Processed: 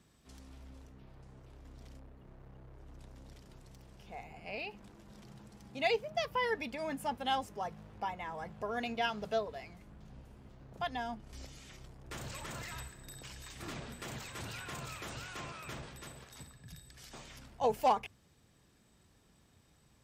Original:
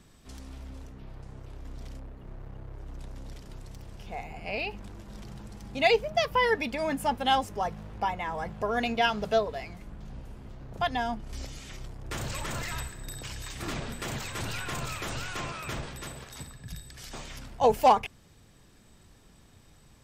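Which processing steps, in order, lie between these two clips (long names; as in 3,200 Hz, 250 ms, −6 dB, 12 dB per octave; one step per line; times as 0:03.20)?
high-pass filter 46 Hz
mains-hum notches 50/100 Hz
level −8.5 dB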